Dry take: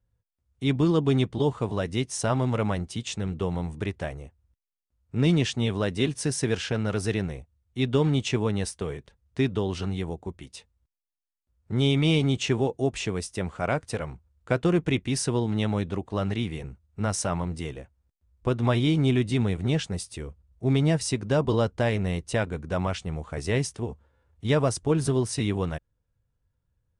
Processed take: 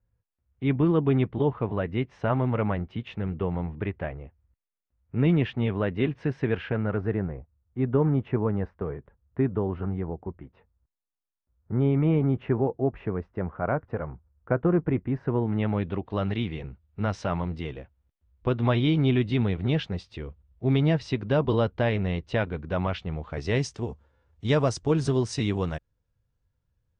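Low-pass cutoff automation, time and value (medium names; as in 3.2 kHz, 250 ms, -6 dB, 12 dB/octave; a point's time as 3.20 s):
low-pass 24 dB/octave
6.55 s 2.5 kHz
7.18 s 1.6 kHz
15.19 s 1.6 kHz
16.11 s 3.9 kHz
23.19 s 3.9 kHz
23.72 s 6.7 kHz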